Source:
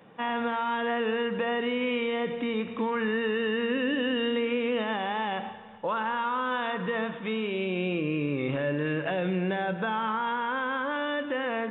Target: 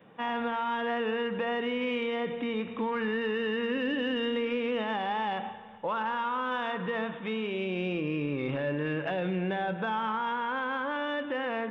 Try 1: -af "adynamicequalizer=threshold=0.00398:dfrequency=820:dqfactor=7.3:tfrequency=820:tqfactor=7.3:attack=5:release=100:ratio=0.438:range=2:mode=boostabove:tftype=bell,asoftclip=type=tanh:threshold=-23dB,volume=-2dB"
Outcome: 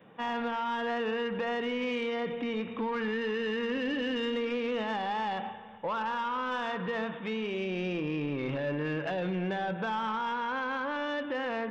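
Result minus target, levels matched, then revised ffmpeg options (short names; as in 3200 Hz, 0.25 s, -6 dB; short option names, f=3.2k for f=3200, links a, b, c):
soft clip: distortion +11 dB
-af "adynamicequalizer=threshold=0.00398:dfrequency=820:dqfactor=7.3:tfrequency=820:tqfactor=7.3:attack=5:release=100:ratio=0.438:range=2:mode=boostabove:tftype=bell,asoftclip=type=tanh:threshold=-16dB,volume=-2dB"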